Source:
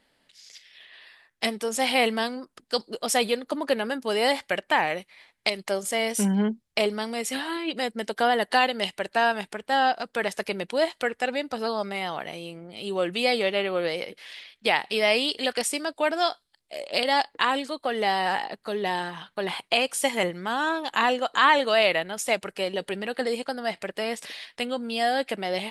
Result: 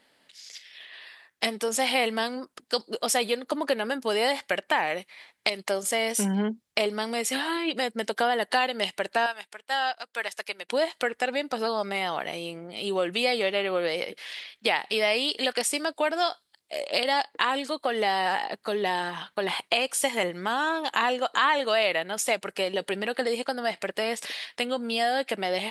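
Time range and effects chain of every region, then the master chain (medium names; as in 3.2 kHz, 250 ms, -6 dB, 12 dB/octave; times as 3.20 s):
9.26–10.69 s: high-pass 1.4 kHz 6 dB/octave + upward expansion, over -49 dBFS
whole clip: high-pass 230 Hz 6 dB/octave; compression 2:1, threshold -29 dBFS; trim +4 dB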